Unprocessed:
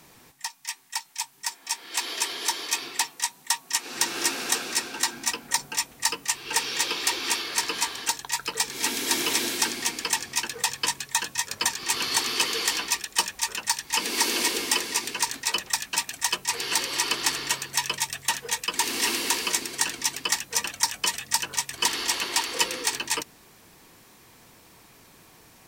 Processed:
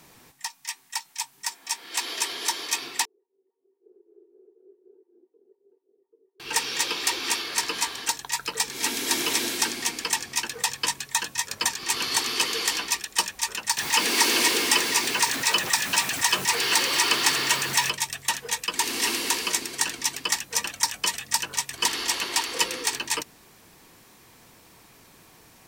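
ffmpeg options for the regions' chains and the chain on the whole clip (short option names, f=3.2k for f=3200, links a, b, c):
-filter_complex "[0:a]asettb=1/sr,asplit=3[a][b][c];[a]atrim=end=3.054[d];[b]atrim=start=3.05:end=6.4,asetpts=PTS-STARTPTS,afade=t=in:d=0.004:c=qsin,afade=t=out:st=3.346:d=0.004:c=qsin,acompressor=threshold=-36dB:ratio=10:attack=3.2:release=140:knee=1:detection=peak,asuperpass=centerf=400:order=4:qfactor=5.8[e];[c]atrim=start=6.396[f];[d][e]acrossfade=d=0.004:c1=hsin:c2=qsin[g];[g][f]acrossfade=d=0.004:c1=qsin:c2=hsin,asettb=1/sr,asplit=3[h][i][j];[h]atrim=end=13.774[k];[i]atrim=start=13.77:end=17.9,asetpts=PTS-STARTPTS,afade=t=in:d=0.004:c=qsin,afade=t=out:st=4.126:d=0.004:c=qsin,aeval=exprs='val(0)+0.5*0.0422*sgn(val(0))':c=same,highpass=93,equalizer=f=1.7k:w=0.52:g=3[l];[j]atrim=start=17.896[m];[k][l]acrossfade=d=0.004:c1=hsin:c2=qsin[n];[n][m]acrossfade=d=0.004:c1=qsin:c2=hsin"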